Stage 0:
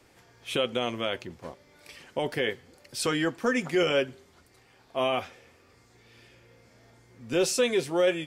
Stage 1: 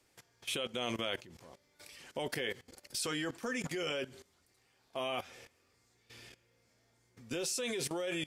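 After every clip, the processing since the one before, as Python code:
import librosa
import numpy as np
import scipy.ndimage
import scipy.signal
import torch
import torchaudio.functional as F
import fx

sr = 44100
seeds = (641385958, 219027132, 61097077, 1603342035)

y = fx.peak_eq(x, sr, hz=10000.0, db=8.5, octaves=2.7)
y = fx.level_steps(y, sr, step_db=18)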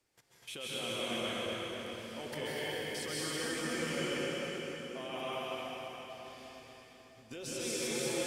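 y = fx.echo_split(x, sr, split_hz=340.0, low_ms=470, high_ms=247, feedback_pct=52, wet_db=-5.5)
y = fx.rev_plate(y, sr, seeds[0], rt60_s=3.9, hf_ratio=0.8, predelay_ms=120, drr_db=-8.0)
y = F.gain(torch.from_numpy(y), -8.0).numpy()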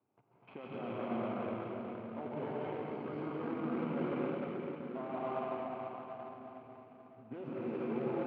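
y = scipy.signal.medfilt(x, 25)
y = fx.cabinet(y, sr, low_hz=120.0, low_slope=24, high_hz=2200.0, hz=(160.0, 340.0, 510.0, 1800.0), db=(-6, -4, -9, -9))
y = y + 10.0 ** (-12.5 / 20.0) * np.pad(y, (int(87 * sr / 1000.0), 0))[:len(y)]
y = F.gain(torch.from_numpy(y), 6.0).numpy()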